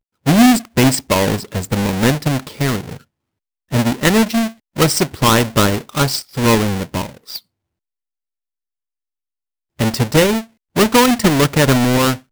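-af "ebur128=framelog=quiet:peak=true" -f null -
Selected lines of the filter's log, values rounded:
Integrated loudness:
  I:         -15.5 LUFS
  Threshold: -25.9 LUFS
Loudness range:
  LRA:         7.2 LU
  Threshold: -37.9 LUFS
  LRA low:   -22.8 LUFS
  LRA high:  -15.6 LUFS
True peak:
  Peak:       -0.9 dBFS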